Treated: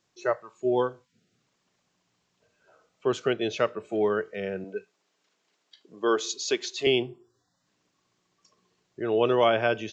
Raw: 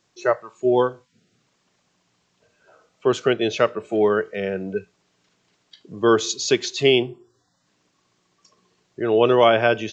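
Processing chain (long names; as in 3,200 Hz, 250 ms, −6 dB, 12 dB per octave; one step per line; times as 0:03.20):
0:04.64–0:06.87: high-pass filter 310 Hz 12 dB per octave
level −6.5 dB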